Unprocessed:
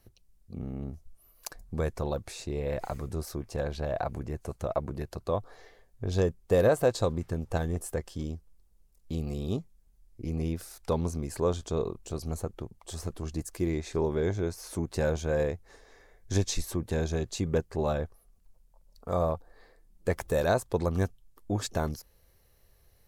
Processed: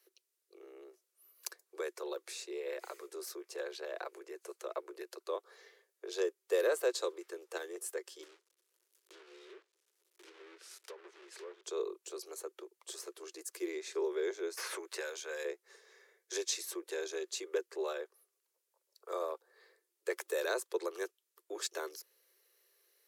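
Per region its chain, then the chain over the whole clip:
0:08.23–0:11.64: one scale factor per block 3 bits + treble cut that deepens with the level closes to 1,500 Hz, closed at −23.5 dBFS + downward compressor 2.5 to 1, threshold −44 dBFS
0:14.57–0:15.45: high-pass filter 1,100 Hz 6 dB per octave + multiband upward and downward compressor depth 100%
whole clip: Butterworth high-pass 350 Hz 96 dB per octave; parametric band 730 Hz −13.5 dB 0.84 octaves; level −1.5 dB

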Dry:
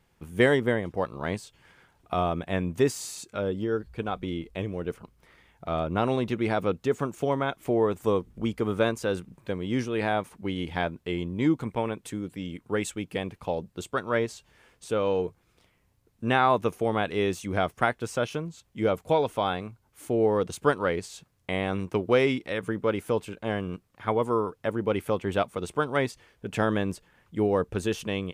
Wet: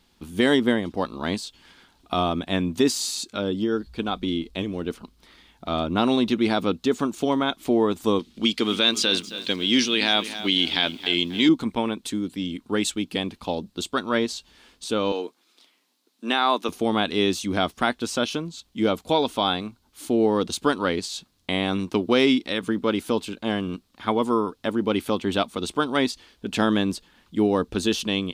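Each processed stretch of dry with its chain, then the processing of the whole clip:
0:08.19–0:11.49: meter weighting curve D + feedback echo at a low word length 269 ms, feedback 35%, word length 8 bits, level −15 dB
0:15.12–0:16.69: high-pass filter 240 Hz 24 dB per octave + low-shelf EQ 500 Hz −6.5 dB
whole clip: octave-band graphic EQ 125/250/500/2,000/4,000 Hz −12/+8/−6/−5/+11 dB; boost into a limiter +12.5 dB; level −7.5 dB

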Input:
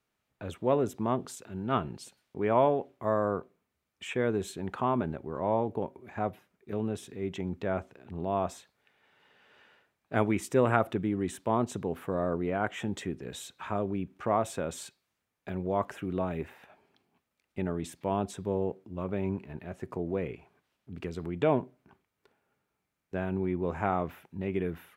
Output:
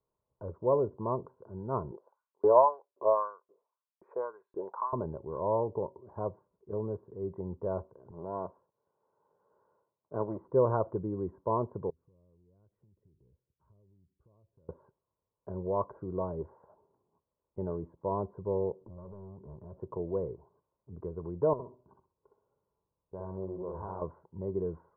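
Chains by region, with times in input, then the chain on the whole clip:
0:01.91–0:04.93: auto-filter high-pass saw up 1.9 Hz 300–4,300 Hz + highs frequency-modulated by the lows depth 0.15 ms
0:08.11–0:10.48: gain on one half-wave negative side −12 dB + high-pass filter 130 Hz
0:11.90–0:14.69: guitar amp tone stack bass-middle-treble 10-0-1 + downward compressor, threshold −58 dBFS
0:18.81–0:19.80: low-shelf EQ 460 Hz +9 dB + downward compressor 4 to 1, threshold −39 dBFS + hard clipping −40 dBFS
0:21.53–0:24.02: downward compressor 2 to 1, threshold −39 dBFS + repeating echo 63 ms, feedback 24%, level −4 dB + highs frequency-modulated by the lows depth 0.38 ms
whole clip: elliptic low-pass filter 1,100 Hz, stop band 60 dB; comb filter 2 ms, depth 57%; level −2.5 dB

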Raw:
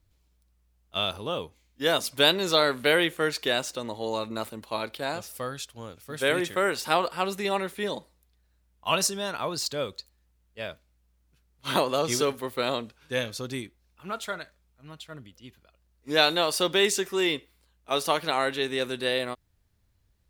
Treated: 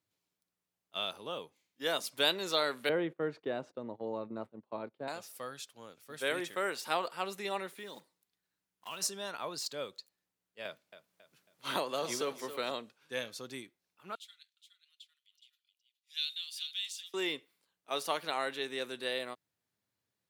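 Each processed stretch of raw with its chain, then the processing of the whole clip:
0:02.89–0:05.08: noise gate −39 dBFS, range −17 dB + low-pass filter 1,000 Hz 6 dB per octave + spectral tilt −3 dB per octave
0:07.77–0:09.02: one scale factor per block 5 bits + parametric band 600 Hz −5.5 dB 0.67 octaves + downward compressor 2.5 to 1, threshold −34 dBFS
0:10.65–0:12.71: repeating echo 273 ms, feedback 28%, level −15 dB + multiband upward and downward compressor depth 40%
0:14.15–0:17.14: four-pole ladder high-pass 2,800 Hz, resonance 50% + single-tap delay 418 ms −9.5 dB
whole clip: high-pass filter 120 Hz 24 dB per octave; low-shelf EQ 190 Hz −10.5 dB; level −8 dB

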